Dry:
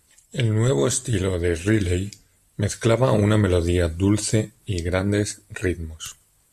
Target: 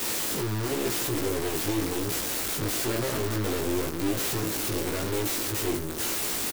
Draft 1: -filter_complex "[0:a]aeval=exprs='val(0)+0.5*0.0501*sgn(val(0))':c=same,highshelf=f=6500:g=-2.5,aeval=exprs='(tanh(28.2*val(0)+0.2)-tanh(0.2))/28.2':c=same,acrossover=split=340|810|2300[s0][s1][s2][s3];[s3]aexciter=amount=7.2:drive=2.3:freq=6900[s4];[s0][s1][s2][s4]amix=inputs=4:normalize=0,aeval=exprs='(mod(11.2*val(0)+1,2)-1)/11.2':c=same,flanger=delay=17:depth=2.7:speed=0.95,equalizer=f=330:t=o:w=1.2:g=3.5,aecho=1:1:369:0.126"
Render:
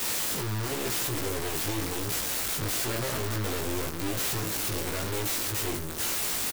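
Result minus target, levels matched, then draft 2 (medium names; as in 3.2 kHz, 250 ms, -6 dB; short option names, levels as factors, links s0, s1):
250 Hz band -4.5 dB
-filter_complex "[0:a]aeval=exprs='val(0)+0.5*0.0501*sgn(val(0))':c=same,highshelf=f=6500:g=-2.5,aeval=exprs='(tanh(28.2*val(0)+0.2)-tanh(0.2))/28.2':c=same,acrossover=split=340|810|2300[s0][s1][s2][s3];[s3]aexciter=amount=7.2:drive=2.3:freq=6900[s4];[s0][s1][s2][s4]amix=inputs=4:normalize=0,aeval=exprs='(mod(11.2*val(0)+1,2)-1)/11.2':c=same,flanger=delay=17:depth=2.7:speed=0.95,equalizer=f=330:t=o:w=1.2:g=10,aecho=1:1:369:0.126"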